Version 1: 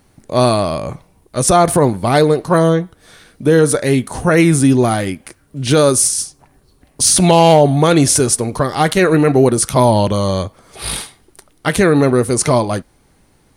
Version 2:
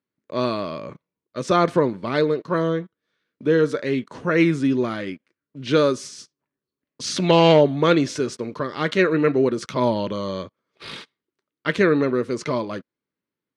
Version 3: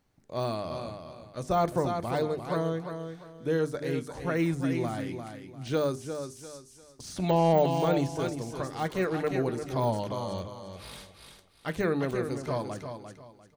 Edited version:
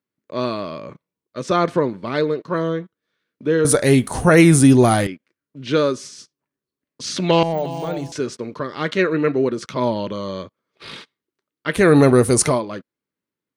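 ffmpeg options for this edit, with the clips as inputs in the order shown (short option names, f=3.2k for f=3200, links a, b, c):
-filter_complex "[0:a]asplit=2[a][b];[1:a]asplit=4[c][d][e][f];[c]atrim=end=3.652[g];[a]atrim=start=3.648:end=5.072[h];[d]atrim=start=5.068:end=7.432[i];[2:a]atrim=start=7.428:end=8.122[j];[e]atrim=start=8.118:end=11.93[k];[b]atrim=start=11.69:end=12.63[l];[f]atrim=start=12.39[m];[g][h]acrossfade=d=0.004:c1=hsin:c2=hsin[n];[n][i]acrossfade=d=0.004:c1=hsin:c2=hsin[o];[o][j]acrossfade=d=0.004:c1=hsin:c2=hsin[p];[p][k]acrossfade=d=0.004:c1=hsin:c2=hsin[q];[q][l]acrossfade=d=0.24:c1=tri:c2=tri[r];[r][m]acrossfade=d=0.24:c1=tri:c2=tri"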